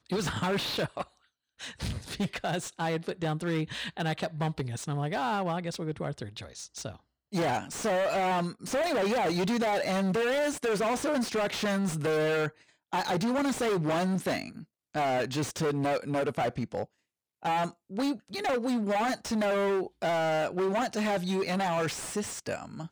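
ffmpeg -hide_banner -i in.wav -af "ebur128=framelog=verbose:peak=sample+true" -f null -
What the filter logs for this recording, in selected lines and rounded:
Integrated loudness:
  I:         -30.1 LUFS
  Threshold: -40.4 LUFS
Loudness range:
  LRA:         5.0 LU
  Threshold: -50.3 LUFS
  LRA low:   -33.3 LUFS
  LRA high:  -28.2 LUFS
Sample peak:
  Peak:      -20.1 dBFS
True peak:
  Peak:      -20.1 dBFS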